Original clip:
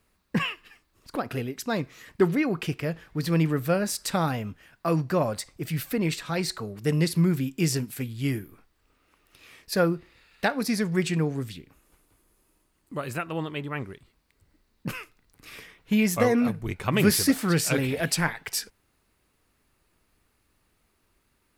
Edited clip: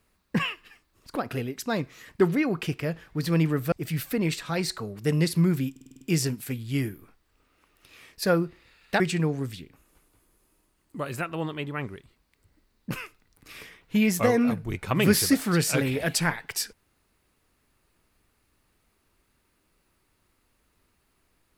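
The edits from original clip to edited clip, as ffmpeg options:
-filter_complex "[0:a]asplit=9[a][b][c][d][e][f][g][h][i];[a]atrim=end=3.722[j];[b]atrim=start=5.518:end=7.562[k];[c]atrim=start=7.508:end=7.562[l];[d]atrim=start=7.508:end=7.562[m];[e]atrim=start=7.508:end=7.562[n];[f]atrim=start=7.508:end=7.562[o];[g]atrim=start=7.508:end=7.562[p];[h]atrim=start=7.508:end=10.502[q];[i]atrim=start=10.968[r];[j][k]acrossfade=d=0.004:c1=hsin:c2=hsin[s];[s][l]acrossfade=d=0.004:c1=hsin:c2=hsin[t];[t][m]acrossfade=d=0.004:c1=hsin:c2=hsin[u];[u][n]acrossfade=d=0.004:c1=hsin:c2=hsin[v];[v][o]acrossfade=d=0.004:c1=hsin:c2=hsin[w];[w][p]acrossfade=d=0.004:c1=hsin:c2=hsin[x];[x][q]acrossfade=d=0.004:c1=hsin:c2=hsin[y];[y][r]acrossfade=d=0.004:c1=hsin:c2=hsin"

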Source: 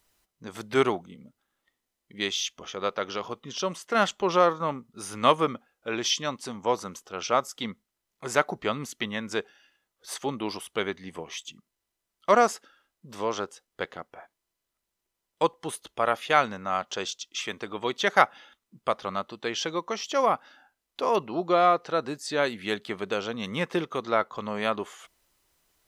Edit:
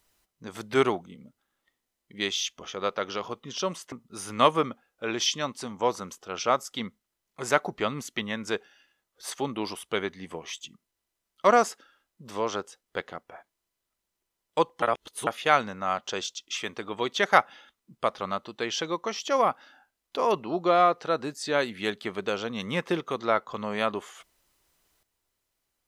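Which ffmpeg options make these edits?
-filter_complex "[0:a]asplit=4[a][b][c][d];[a]atrim=end=3.922[e];[b]atrim=start=4.758:end=15.662[f];[c]atrim=start=15.658:end=16.112,asetpts=PTS-STARTPTS,areverse[g];[d]atrim=start=16.108[h];[e][f]acrossfade=d=0.004:c1=hsin:c2=hsin[i];[i][g]acrossfade=d=0.004:c1=hsin:c2=hsin[j];[j][h]acrossfade=d=0.004:c1=hsin:c2=hsin"

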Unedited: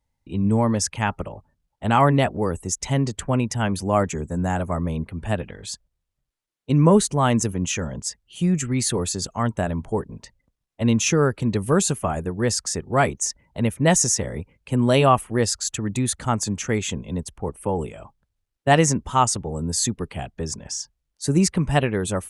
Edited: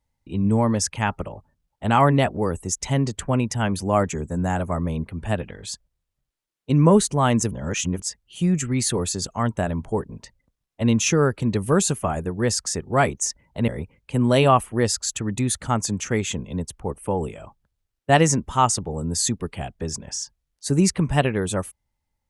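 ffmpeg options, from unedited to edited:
-filter_complex "[0:a]asplit=4[a][b][c][d];[a]atrim=end=7.512[e];[b]atrim=start=7.508:end=8.002,asetpts=PTS-STARTPTS,areverse[f];[c]atrim=start=7.998:end=13.682[g];[d]atrim=start=14.258[h];[e][f]acrossfade=d=0.004:c1=hsin:c2=hsin[i];[i][g]acrossfade=d=0.004:c1=hsin:c2=hsin[j];[j][h]acrossfade=d=0.004:c1=hsin:c2=hsin"

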